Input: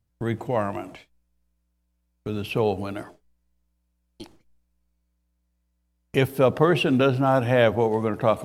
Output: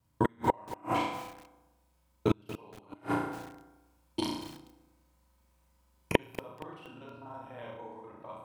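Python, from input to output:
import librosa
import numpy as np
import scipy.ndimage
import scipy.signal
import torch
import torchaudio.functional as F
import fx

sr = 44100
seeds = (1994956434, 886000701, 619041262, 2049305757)

p1 = fx.local_reverse(x, sr, ms=41.0)
p2 = scipy.signal.sosfilt(scipy.signal.butter(2, 59.0, 'highpass', fs=sr, output='sos'), p1)
p3 = fx.low_shelf(p2, sr, hz=110.0, db=-2.5)
p4 = fx.hum_notches(p3, sr, base_hz=60, count=3)
p5 = p4 + fx.room_flutter(p4, sr, wall_m=5.8, rt60_s=0.7, dry=0)
p6 = fx.rev_fdn(p5, sr, rt60_s=1.1, lf_ratio=1.0, hf_ratio=0.5, size_ms=19.0, drr_db=4.0)
p7 = fx.gate_flip(p6, sr, shuts_db=-17.0, range_db=-38)
p8 = fx.peak_eq(p7, sr, hz=970.0, db=14.5, octaves=0.23)
p9 = fx.rider(p8, sr, range_db=3, speed_s=0.5)
p10 = fx.echo_crushed(p9, sr, ms=235, feedback_pct=35, bits=7, wet_db=-13.5)
y = p10 * librosa.db_to_amplitude(6.0)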